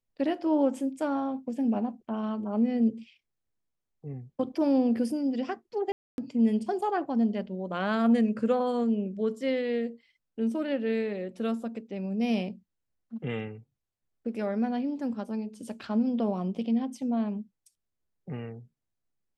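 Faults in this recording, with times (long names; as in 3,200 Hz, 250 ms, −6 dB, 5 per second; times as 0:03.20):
0:05.92–0:06.18: drop-out 261 ms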